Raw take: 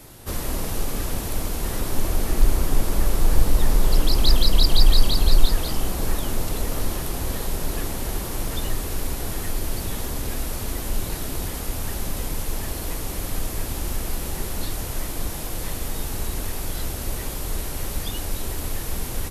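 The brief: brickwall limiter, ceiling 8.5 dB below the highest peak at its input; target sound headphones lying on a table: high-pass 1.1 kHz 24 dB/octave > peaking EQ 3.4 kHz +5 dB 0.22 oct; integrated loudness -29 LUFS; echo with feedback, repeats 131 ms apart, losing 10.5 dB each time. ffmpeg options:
-af "alimiter=limit=0.316:level=0:latency=1,highpass=f=1100:w=0.5412,highpass=f=1100:w=1.3066,equalizer=f=3400:t=o:w=0.22:g=5,aecho=1:1:131|262|393:0.299|0.0896|0.0269,volume=1.19"

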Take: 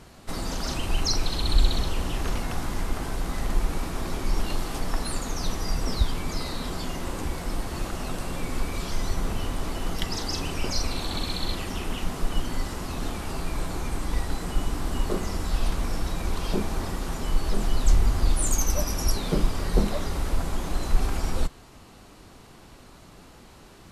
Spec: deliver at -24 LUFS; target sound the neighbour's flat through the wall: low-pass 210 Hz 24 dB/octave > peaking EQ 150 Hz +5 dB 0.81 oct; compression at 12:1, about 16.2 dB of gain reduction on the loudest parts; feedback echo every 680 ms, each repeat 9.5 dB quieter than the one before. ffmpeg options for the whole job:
-af "acompressor=threshold=0.0355:ratio=12,lowpass=f=210:w=0.5412,lowpass=f=210:w=1.3066,equalizer=f=150:t=o:w=0.81:g=5,aecho=1:1:680|1360|2040|2720:0.335|0.111|0.0365|0.012,volume=5.96"

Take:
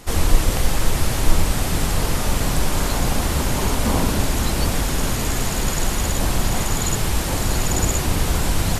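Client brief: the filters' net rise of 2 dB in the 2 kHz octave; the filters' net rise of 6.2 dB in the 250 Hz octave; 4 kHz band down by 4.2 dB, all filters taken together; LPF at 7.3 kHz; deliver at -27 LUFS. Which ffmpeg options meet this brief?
-af "lowpass=7300,equalizer=f=250:t=o:g=8,equalizer=f=2000:t=o:g=4,equalizer=f=4000:t=o:g=-6.5,volume=0.473"

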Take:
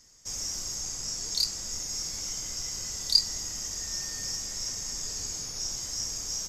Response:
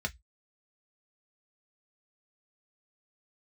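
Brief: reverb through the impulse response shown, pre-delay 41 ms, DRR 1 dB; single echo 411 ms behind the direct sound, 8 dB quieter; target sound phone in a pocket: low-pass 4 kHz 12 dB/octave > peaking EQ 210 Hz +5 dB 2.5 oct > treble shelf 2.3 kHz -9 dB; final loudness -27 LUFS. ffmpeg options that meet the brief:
-filter_complex "[0:a]aecho=1:1:411:0.398,asplit=2[s0][s1];[1:a]atrim=start_sample=2205,adelay=41[s2];[s1][s2]afir=irnorm=-1:irlink=0,volume=0.562[s3];[s0][s3]amix=inputs=2:normalize=0,lowpass=4000,equalizer=f=210:t=o:w=2.5:g=5,highshelf=f=2300:g=-9,volume=3.98"

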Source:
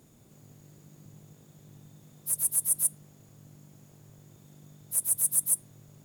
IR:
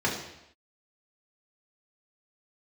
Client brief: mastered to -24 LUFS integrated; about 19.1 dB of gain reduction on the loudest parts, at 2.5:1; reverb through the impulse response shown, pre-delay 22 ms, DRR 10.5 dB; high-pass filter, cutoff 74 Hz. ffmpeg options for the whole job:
-filter_complex "[0:a]highpass=74,acompressor=threshold=0.00316:ratio=2.5,asplit=2[s0][s1];[1:a]atrim=start_sample=2205,adelay=22[s2];[s1][s2]afir=irnorm=-1:irlink=0,volume=0.075[s3];[s0][s3]amix=inputs=2:normalize=0,volume=15"

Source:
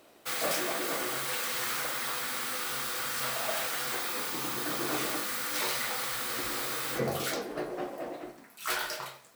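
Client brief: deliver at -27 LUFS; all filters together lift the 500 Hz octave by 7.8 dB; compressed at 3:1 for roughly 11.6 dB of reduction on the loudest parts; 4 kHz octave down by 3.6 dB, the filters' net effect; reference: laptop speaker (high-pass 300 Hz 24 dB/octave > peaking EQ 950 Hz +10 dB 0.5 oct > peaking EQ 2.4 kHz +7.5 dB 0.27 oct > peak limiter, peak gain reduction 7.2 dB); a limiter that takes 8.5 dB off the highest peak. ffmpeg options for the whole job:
-af "equalizer=f=500:t=o:g=8.5,equalizer=f=4000:t=o:g=-5.5,acompressor=threshold=0.0141:ratio=3,alimiter=level_in=2.51:limit=0.0631:level=0:latency=1,volume=0.398,highpass=f=300:w=0.5412,highpass=f=300:w=1.3066,equalizer=f=950:t=o:w=0.5:g=10,equalizer=f=2400:t=o:w=0.27:g=7.5,volume=6.31,alimiter=limit=0.119:level=0:latency=1"

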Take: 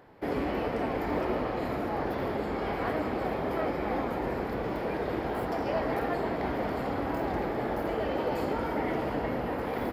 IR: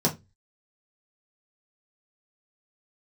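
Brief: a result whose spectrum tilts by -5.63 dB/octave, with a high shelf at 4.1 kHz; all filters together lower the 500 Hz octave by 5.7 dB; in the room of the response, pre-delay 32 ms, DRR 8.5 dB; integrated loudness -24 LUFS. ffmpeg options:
-filter_complex "[0:a]equalizer=f=500:t=o:g=-7.5,highshelf=f=4100:g=3,asplit=2[s0][s1];[1:a]atrim=start_sample=2205,adelay=32[s2];[s1][s2]afir=irnorm=-1:irlink=0,volume=0.1[s3];[s0][s3]amix=inputs=2:normalize=0,volume=2.51"

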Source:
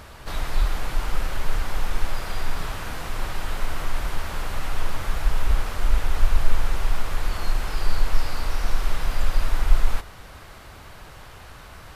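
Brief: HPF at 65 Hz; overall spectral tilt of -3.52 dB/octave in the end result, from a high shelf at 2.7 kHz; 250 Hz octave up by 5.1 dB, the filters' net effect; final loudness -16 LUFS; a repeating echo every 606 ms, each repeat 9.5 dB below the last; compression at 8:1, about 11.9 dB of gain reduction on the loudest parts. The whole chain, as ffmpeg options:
-af "highpass=65,equalizer=f=250:t=o:g=7,highshelf=f=2700:g=6.5,acompressor=threshold=0.0178:ratio=8,aecho=1:1:606|1212|1818|2424:0.335|0.111|0.0365|0.012,volume=12.6"

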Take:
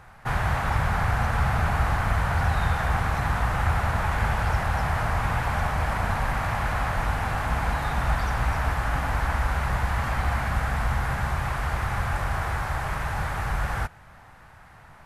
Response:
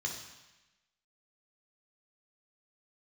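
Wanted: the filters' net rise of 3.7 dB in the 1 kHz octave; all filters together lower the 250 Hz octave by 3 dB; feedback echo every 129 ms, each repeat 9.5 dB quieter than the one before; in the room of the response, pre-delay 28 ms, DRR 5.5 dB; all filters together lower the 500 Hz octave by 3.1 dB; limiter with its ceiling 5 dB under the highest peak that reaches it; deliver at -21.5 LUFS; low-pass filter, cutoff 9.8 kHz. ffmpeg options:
-filter_complex "[0:a]lowpass=9800,equalizer=f=250:t=o:g=-4,equalizer=f=500:t=o:g=-7.5,equalizer=f=1000:t=o:g=7,alimiter=limit=0.178:level=0:latency=1,aecho=1:1:129|258|387|516:0.335|0.111|0.0365|0.012,asplit=2[s0][s1];[1:a]atrim=start_sample=2205,adelay=28[s2];[s1][s2]afir=irnorm=-1:irlink=0,volume=0.398[s3];[s0][s3]amix=inputs=2:normalize=0,volume=1.33"

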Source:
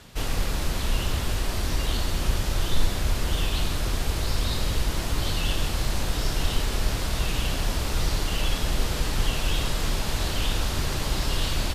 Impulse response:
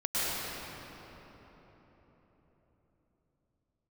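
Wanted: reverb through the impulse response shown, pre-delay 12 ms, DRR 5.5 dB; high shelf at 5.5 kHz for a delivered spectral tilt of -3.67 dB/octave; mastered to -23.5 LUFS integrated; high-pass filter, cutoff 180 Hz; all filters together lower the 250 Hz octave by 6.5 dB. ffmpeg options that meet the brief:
-filter_complex "[0:a]highpass=180,equalizer=f=250:t=o:g=-7,highshelf=f=5500:g=-6,asplit=2[s0][s1];[1:a]atrim=start_sample=2205,adelay=12[s2];[s1][s2]afir=irnorm=-1:irlink=0,volume=0.158[s3];[s0][s3]amix=inputs=2:normalize=0,volume=2.51"

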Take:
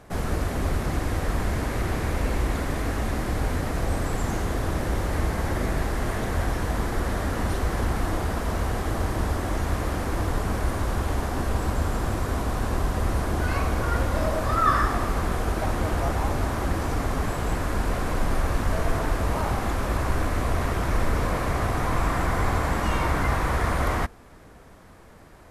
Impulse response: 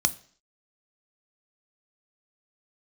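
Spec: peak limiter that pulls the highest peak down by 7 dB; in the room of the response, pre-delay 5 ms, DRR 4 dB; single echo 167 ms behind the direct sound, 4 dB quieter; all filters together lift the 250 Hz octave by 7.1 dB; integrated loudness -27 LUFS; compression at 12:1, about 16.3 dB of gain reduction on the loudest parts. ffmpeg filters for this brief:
-filter_complex "[0:a]equalizer=f=250:t=o:g=9,acompressor=threshold=0.02:ratio=12,alimiter=level_in=2.66:limit=0.0631:level=0:latency=1,volume=0.376,aecho=1:1:167:0.631,asplit=2[s0][s1];[1:a]atrim=start_sample=2205,adelay=5[s2];[s1][s2]afir=irnorm=-1:irlink=0,volume=0.224[s3];[s0][s3]amix=inputs=2:normalize=0,volume=3.98"

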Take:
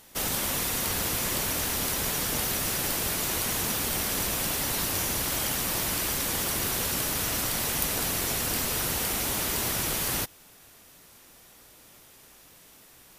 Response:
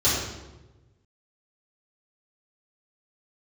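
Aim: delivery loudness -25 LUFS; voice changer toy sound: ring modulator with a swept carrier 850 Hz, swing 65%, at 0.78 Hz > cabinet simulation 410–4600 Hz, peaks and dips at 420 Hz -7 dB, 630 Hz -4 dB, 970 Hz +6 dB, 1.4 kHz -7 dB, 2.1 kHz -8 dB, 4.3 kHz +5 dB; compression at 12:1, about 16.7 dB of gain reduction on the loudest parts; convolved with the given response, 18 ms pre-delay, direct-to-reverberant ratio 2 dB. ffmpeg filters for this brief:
-filter_complex "[0:a]acompressor=threshold=0.01:ratio=12,asplit=2[s0][s1];[1:a]atrim=start_sample=2205,adelay=18[s2];[s1][s2]afir=irnorm=-1:irlink=0,volume=0.133[s3];[s0][s3]amix=inputs=2:normalize=0,aeval=exprs='val(0)*sin(2*PI*850*n/s+850*0.65/0.78*sin(2*PI*0.78*n/s))':c=same,highpass=410,equalizer=f=420:t=q:w=4:g=-7,equalizer=f=630:t=q:w=4:g=-4,equalizer=f=970:t=q:w=4:g=6,equalizer=f=1400:t=q:w=4:g=-7,equalizer=f=2100:t=q:w=4:g=-8,equalizer=f=4300:t=q:w=4:g=5,lowpass=f=4600:w=0.5412,lowpass=f=4600:w=1.3066,volume=11.9"

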